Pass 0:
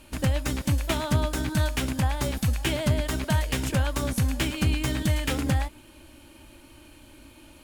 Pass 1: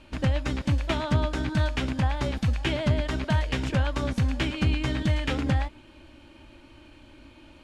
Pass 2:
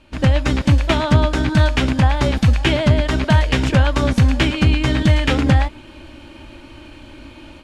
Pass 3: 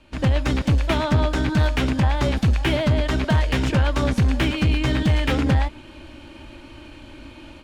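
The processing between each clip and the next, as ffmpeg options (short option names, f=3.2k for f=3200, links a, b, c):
-af "lowpass=4.2k"
-af "dynaudnorm=f=110:g=3:m=11.5dB"
-filter_complex "[0:a]aeval=exprs='0.794*(cos(1*acos(clip(val(0)/0.794,-1,1)))-cos(1*PI/2))+0.1*(cos(5*acos(clip(val(0)/0.794,-1,1)))-cos(5*PI/2))':c=same,acrossover=split=230|2600[a][b][c];[c]volume=23.5dB,asoftclip=hard,volume=-23.5dB[d];[a][b][d]amix=inputs=3:normalize=0,volume=-6.5dB"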